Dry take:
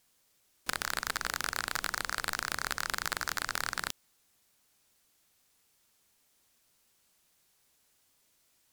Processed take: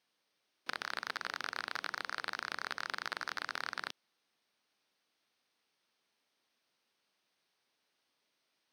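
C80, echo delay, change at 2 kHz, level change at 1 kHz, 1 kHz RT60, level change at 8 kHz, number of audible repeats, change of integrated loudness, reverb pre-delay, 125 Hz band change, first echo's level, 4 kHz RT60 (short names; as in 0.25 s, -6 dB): none, none, -4.5 dB, -4.5 dB, none, -16.5 dB, none, -5.5 dB, none, -14.5 dB, none, none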